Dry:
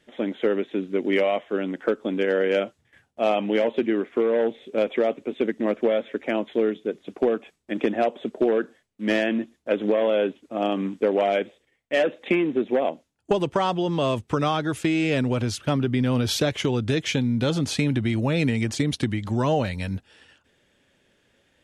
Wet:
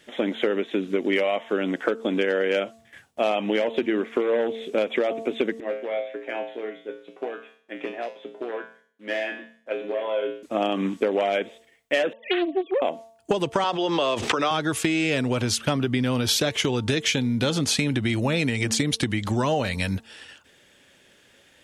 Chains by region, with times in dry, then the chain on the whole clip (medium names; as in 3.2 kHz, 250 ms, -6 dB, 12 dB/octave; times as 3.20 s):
5.60–10.43 s: tone controls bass -11 dB, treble -8 dB + feedback comb 59 Hz, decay 0.47 s, harmonics odd, mix 90%
12.13–12.82 s: formants replaced by sine waves + bass shelf 410 Hz -7.5 dB + loudspeaker Doppler distortion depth 0.31 ms
13.64–14.51 s: three-band isolator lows -18 dB, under 290 Hz, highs -20 dB, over 6.8 kHz + swell ahead of each attack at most 44 dB/s
whole clip: tilt EQ +1.5 dB/octave; de-hum 225.7 Hz, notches 5; compression 4:1, threshold -28 dBFS; trim +7.5 dB